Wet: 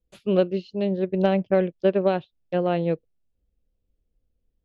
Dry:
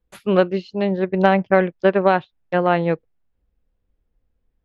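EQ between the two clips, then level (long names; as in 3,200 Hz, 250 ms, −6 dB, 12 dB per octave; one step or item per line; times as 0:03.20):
high-frequency loss of the air 51 metres
flat-topped bell 1,300 Hz −9.5 dB
−3.5 dB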